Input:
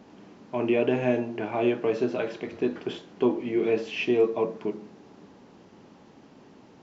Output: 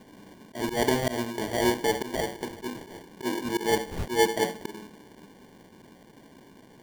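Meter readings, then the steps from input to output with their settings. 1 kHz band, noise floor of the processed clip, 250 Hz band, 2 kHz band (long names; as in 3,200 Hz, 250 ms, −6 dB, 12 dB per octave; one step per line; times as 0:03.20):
+5.5 dB, −54 dBFS, −3.5 dB, +3.0 dB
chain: volume swells 124 ms
decimation without filtering 34×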